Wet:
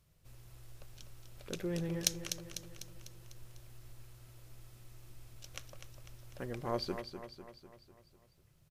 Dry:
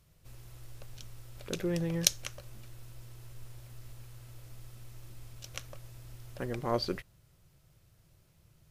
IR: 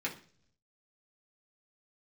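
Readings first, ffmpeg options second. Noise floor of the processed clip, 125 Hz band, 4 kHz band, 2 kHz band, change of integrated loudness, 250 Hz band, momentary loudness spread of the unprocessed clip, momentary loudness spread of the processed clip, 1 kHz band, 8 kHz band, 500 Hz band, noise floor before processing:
-68 dBFS, -5.0 dB, -5.0 dB, -4.5 dB, -6.0 dB, -4.5 dB, 21 LU, 21 LU, -4.5 dB, -5.0 dB, -4.0 dB, -65 dBFS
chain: -af "aecho=1:1:249|498|747|996|1245|1494:0.355|0.192|0.103|0.0559|0.0302|0.0163,asoftclip=type=hard:threshold=-5.5dB,volume=-5dB"

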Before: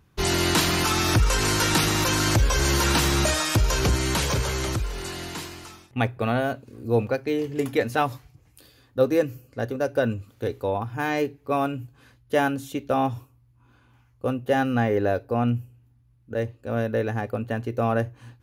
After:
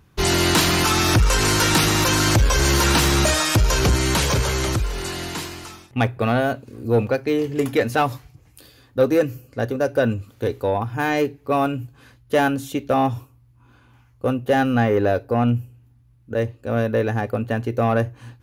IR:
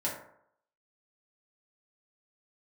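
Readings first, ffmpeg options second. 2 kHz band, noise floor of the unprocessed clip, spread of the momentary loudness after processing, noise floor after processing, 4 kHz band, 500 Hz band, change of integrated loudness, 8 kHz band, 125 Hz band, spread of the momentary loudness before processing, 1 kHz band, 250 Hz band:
+4.0 dB, -60 dBFS, 11 LU, -55 dBFS, +4.0 dB, +4.0 dB, +4.0 dB, +4.0 dB, +4.0 dB, 11 LU, +4.0 dB, +4.5 dB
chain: -af "aeval=exprs='0.376*(cos(1*acos(clip(val(0)/0.376,-1,1)))-cos(1*PI/2))+0.0266*(cos(5*acos(clip(val(0)/0.376,-1,1)))-cos(5*PI/2))':c=same,volume=2.5dB"

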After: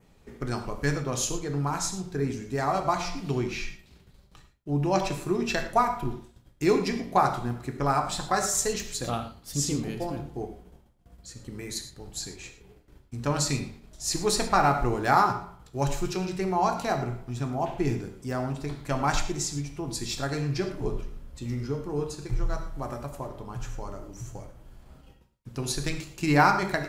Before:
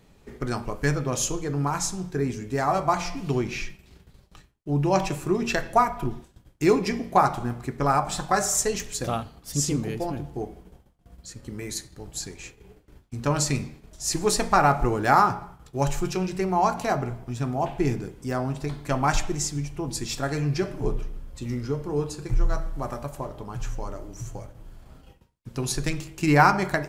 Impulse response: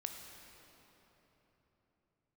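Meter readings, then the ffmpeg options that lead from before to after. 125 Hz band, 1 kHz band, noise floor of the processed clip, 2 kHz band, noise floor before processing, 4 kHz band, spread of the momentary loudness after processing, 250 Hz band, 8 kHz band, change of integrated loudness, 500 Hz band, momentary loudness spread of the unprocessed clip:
-3.0 dB, -2.5 dB, -58 dBFS, -2.5 dB, -57 dBFS, 0.0 dB, 15 LU, -2.5 dB, -2.5 dB, -2.5 dB, -2.5 dB, 15 LU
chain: -filter_complex "[0:a]adynamicequalizer=threshold=0.00447:dfrequency=4000:dqfactor=2.8:tfrequency=4000:tqfactor=2.8:attack=5:release=100:ratio=0.375:range=2.5:mode=boostabove:tftype=bell[a];[1:a]atrim=start_sample=2205,afade=t=out:st=0.17:d=0.01,atrim=end_sample=7938[b];[a][b]afir=irnorm=-1:irlink=0"

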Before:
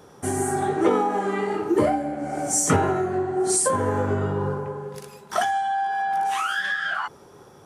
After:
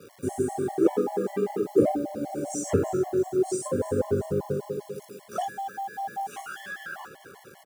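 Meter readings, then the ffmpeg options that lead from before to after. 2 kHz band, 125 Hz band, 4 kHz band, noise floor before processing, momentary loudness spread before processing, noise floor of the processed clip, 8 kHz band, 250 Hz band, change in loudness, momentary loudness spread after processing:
-13.0 dB, -5.5 dB, -13.0 dB, -49 dBFS, 9 LU, -53 dBFS, -13.0 dB, -2.0 dB, -4.5 dB, 13 LU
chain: -filter_complex "[0:a]acrossover=split=6800[a][b];[b]acompressor=threshold=-45dB:ratio=4:attack=1:release=60[c];[a][c]amix=inputs=2:normalize=0,equalizer=f=500:t=o:w=1:g=5,equalizer=f=1k:t=o:w=1:g=-11,equalizer=f=2k:t=o:w=1:g=-7,equalizer=f=4k:t=o:w=1:g=-11,acrusher=bits=7:mix=0:aa=0.000001,highpass=100,aecho=1:1:333|666|999|1332|1665:0.178|0.096|0.0519|0.028|0.0151,afftfilt=real='re*gt(sin(2*PI*5.1*pts/sr)*(1-2*mod(floor(b*sr/1024/570),2)),0)':imag='im*gt(sin(2*PI*5.1*pts/sr)*(1-2*mod(floor(b*sr/1024/570),2)),0)':win_size=1024:overlap=0.75"

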